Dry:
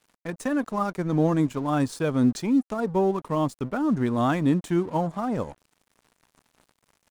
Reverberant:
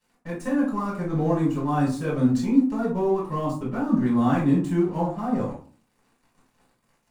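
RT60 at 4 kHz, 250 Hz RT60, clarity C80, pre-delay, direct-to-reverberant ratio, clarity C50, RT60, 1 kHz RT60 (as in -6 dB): 0.25 s, 0.55 s, 11.0 dB, 5 ms, -6.5 dB, 5.5 dB, 0.40 s, 0.40 s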